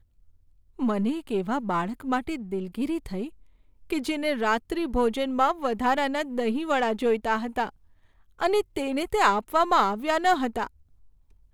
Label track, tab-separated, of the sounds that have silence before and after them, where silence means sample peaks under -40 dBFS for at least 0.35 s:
0.790000	3.290000	sound
3.900000	7.690000	sound
8.390000	10.670000	sound